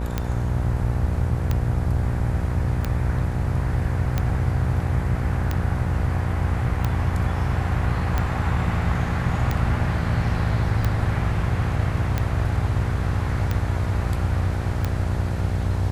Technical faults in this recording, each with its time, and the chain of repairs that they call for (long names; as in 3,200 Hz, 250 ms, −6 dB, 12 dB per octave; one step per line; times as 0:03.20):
mains buzz 60 Hz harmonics 16 −27 dBFS
scratch tick 45 rpm −10 dBFS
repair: click removal
hum removal 60 Hz, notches 16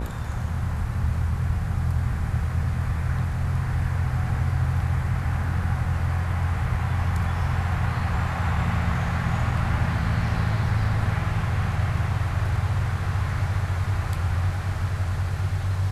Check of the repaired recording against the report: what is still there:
none of them is left